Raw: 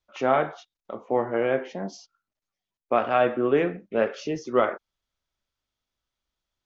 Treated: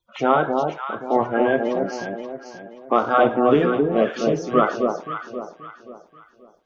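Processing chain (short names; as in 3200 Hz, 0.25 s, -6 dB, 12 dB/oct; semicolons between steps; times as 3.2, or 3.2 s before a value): bin magnitudes rounded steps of 30 dB; on a send: echo with dull and thin repeats by turns 0.265 s, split 1000 Hz, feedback 58%, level -3 dB; on the sum: gain +4.5 dB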